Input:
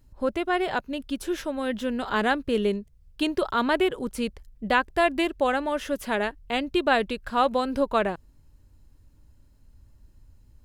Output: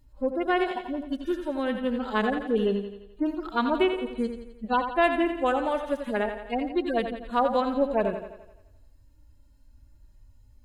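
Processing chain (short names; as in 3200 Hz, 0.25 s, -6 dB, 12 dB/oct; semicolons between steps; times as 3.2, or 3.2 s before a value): median-filter separation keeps harmonic; thinning echo 86 ms, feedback 56%, high-pass 160 Hz, level -8 dB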